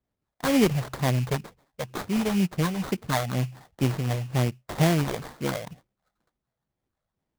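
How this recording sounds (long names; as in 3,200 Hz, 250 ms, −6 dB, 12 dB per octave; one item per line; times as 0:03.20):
phaser sweep stages 8, 2.1 Hz, lowest notch 280–2,700 Hz
aliases and images of a low sample rate 2,700 Hz, jitter 20%
amplitude modulation by smooth noise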